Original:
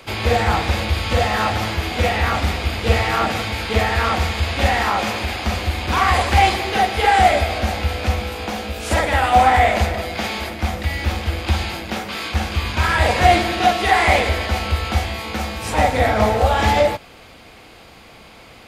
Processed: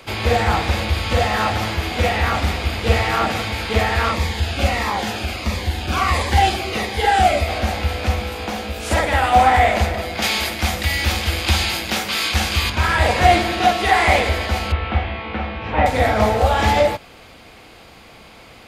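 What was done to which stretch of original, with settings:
4.11–7.48 cascading phaser falling 1.5 Hz
10.22–12.7 high shelf 2100 Hz +11 dB
14.72–15.86 inverse Chebyshev low-pass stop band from 11000 Hz, stop band 70 dB

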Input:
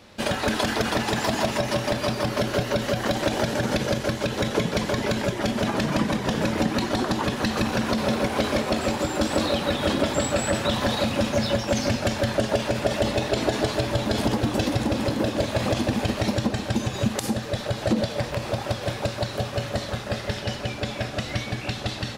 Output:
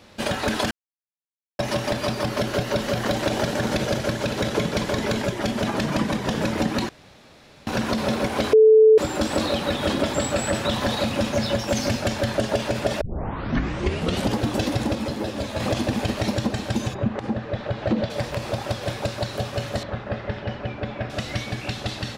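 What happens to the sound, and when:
0.71–1.59 mute
2.12–5.22 echo 0.56 s -8.5 dB
6.89–7.67 room tone
8.53–8.98 bleep 437 Hz -9 dBFS
11.59–12.02 high shelf 9300 Hz +6 dB
13.01 tape start 1.34 s
14.95–15.6 ensemble effect
16.93–18.09 LPF 1500 Hz -> 3400 Hz
19.83–21.1 LPF 2100 Hz

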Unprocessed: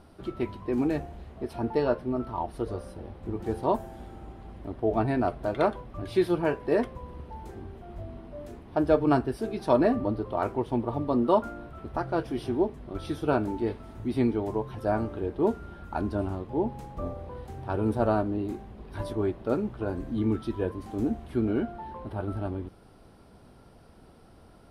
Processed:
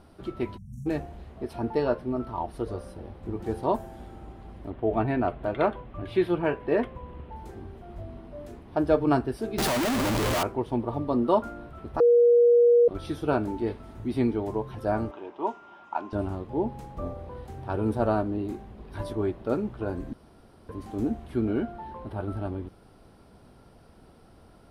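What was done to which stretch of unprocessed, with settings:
0.58–0.86 spectral delete 230–5500 Hz
4.7–7.36 resonant high shelf 4000 Hz -9 dB, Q 1.5
9.58–10.43 infinite clipping
12–12.88 bleep 477 Hz -14.5 dBFS
15.11–16.13 speaker cabinet 470–6500 Hz, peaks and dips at 470 Hz -9 dB, 960 Hz +8 dB, 1700 Hz -5 dB, 2800 Hz +3 dB, 4300 Hz -9 dB
20.13–20.69 room tone

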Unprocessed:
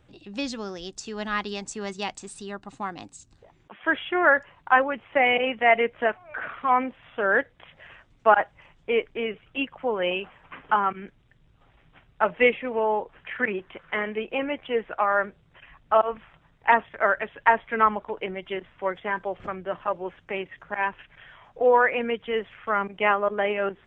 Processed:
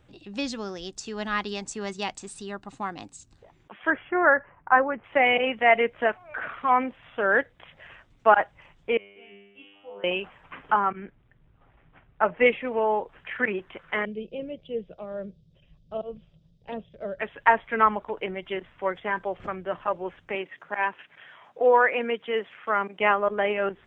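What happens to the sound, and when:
3.9–5.04 LPF 1900 Hz 24 dB/oct
8.97–10.04 resonator 100 Hz, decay 1.1 s, mix 100%
10.72–12.46 LPF 2200 Hz
14.05–17.19 EQ curve 110 Hz 0 dB, 180 Hz +6 dB, 260 Hz -7 dB, 570 Hz -5 dB, 870 Hz -25 dB, 1900 Hz -28 dB, 4800 Hz +6 dB, 11000 Hz -19 dB
20.35–23 HPF 220 Hz

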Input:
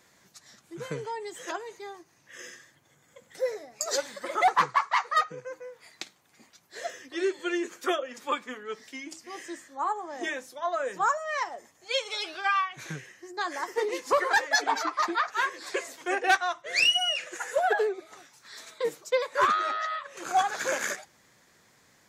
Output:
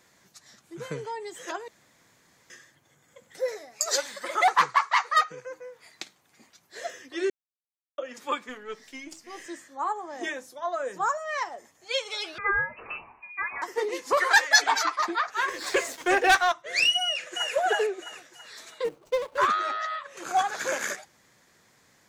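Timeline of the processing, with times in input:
1.68–2.5 room tone
3.48–5.46 tilt shelf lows -4.5 dB, about 670 Hz
7.3–7.98 mute
8.49–9.46 half-wave gain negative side -3 dB
10.32–11.15 bell 2500 Hz -4.5 dB 1.5 oct
12.38–13.62 inverted band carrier 2800 Hz
14.17–14.96 tilt shelf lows -8 dB, about 670 Hz
15.48–16.52 sample leveller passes 2
17.03–17.53 echo throw 0.33 s, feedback 45%, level -2.5 dB
18.84–19.38 median filter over 25 samples

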